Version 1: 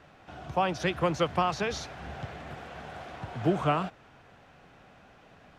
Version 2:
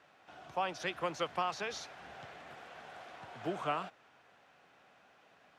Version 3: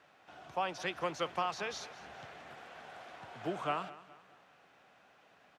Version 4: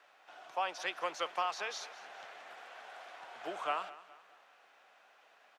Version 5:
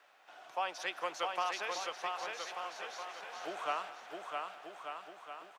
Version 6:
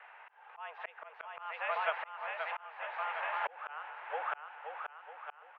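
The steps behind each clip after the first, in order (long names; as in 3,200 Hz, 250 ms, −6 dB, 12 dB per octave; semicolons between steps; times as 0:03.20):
high-pass filter 590 Hz 6 dB per octave; level −5.5 dB
repeating echo 209 ms, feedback 43%, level −17.5 dB
high-pass filter 560 Hz 12 dB per octave; level +1 dB
high-shelf EQ 10,000 Hz +5.5 dB; on a send: bouncing-ball delay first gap 660 ms, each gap 0.8×, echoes 5; on the sum: level −1 dB
single-sideband voice off tune +140 Hz 270–2,500 Hz; volume swells 685 ms; level +11 dB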